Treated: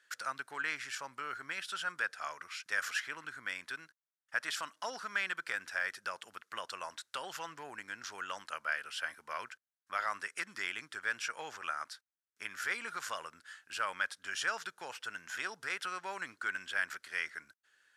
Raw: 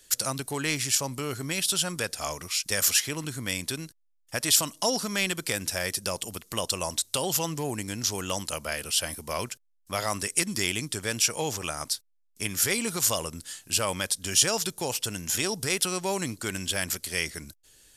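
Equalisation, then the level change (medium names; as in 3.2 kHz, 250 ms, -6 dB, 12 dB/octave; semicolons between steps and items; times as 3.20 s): band-pass filter 1.5 kHz, Q 4; +4.0 dB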